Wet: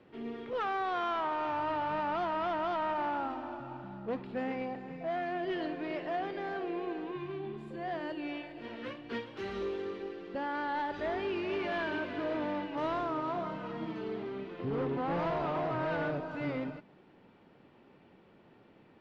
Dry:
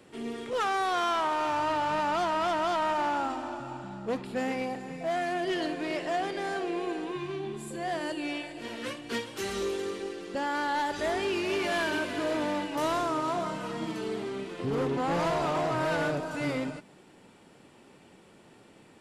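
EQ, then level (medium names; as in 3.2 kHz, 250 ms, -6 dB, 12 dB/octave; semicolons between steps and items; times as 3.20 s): distance through air 290 m; -3.5 dB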